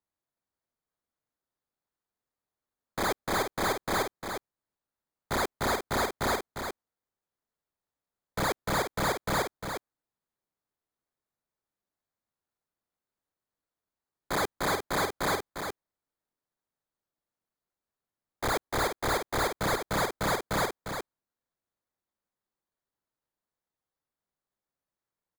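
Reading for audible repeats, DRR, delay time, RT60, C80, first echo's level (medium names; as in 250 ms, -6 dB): 1, no reverb, 352 ms, no reverb, no reverb, -7.0 dB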